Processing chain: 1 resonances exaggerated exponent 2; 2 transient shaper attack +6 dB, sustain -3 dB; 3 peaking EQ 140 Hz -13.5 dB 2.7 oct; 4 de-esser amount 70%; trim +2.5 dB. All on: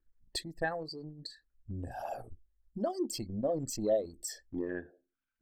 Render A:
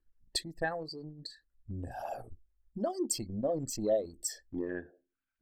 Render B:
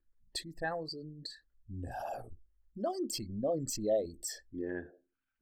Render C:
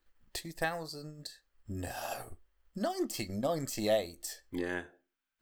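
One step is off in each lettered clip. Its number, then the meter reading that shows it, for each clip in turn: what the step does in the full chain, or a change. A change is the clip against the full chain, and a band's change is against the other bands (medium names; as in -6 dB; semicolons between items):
4, 8 kHz band +4.5 dB; 2, 8 kHz band +2.0 dB; 1, 2 kHz band +3.5 dB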